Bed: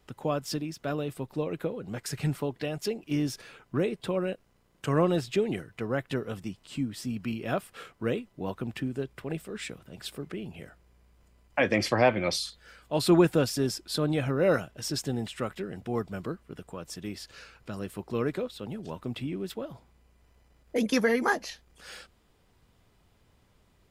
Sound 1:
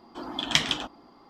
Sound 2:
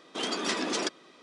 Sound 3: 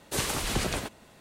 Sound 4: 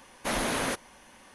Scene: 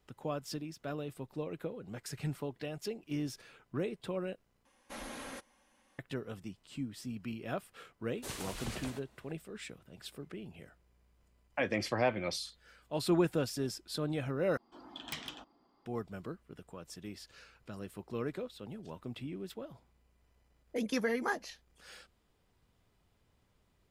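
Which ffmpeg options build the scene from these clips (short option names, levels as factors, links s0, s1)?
-filter_complex "[0:a]volume=0.398[s0];[4:a]aecho=1:1:3.7:0.41[s1];[1:a]aeval=exprs='0.2*(abs(mod(val(0)/0.2+3,4)-2)-1)':c=same[s2];[s0]asplit=3[s3][s4][s5];[s3]atrim=end=4.654[s6];[s1]atrim=end=1.34,asetpts=PTS-STARTPTS,volume=0.15[s7];[s4]atrim=start=5.986:end=14.574[s8];[s2]atrim=end=1.29,asetpts=PTS-STARTPTS,volume=0.158[s9];[s5]atrim=start=15.856[s10];[3:a]atrim=end=1.2,asetpts=PTS-STARTPTS,volume=0.224,afade=t=in:d=0.004:c=hsin,afade=t=out:st=1.196:d=0.004:c=hsin,adelay=8110[s11];[s6][s7]acrossfade=d=0.004:c1=hsin:c2=hsin[s12];[s12][s8]acrossfade=d=0.004:c1=hsin:c2=hsin[s13];[s13][s9]acrossfade=d=0.004:c1=hsin:c2=hsin[s14];[s14][s10]acrossfade=d=0.004:c1=hsin:c2=hsin[s15];[s15][s11]amix=inputs=2:normalize=0"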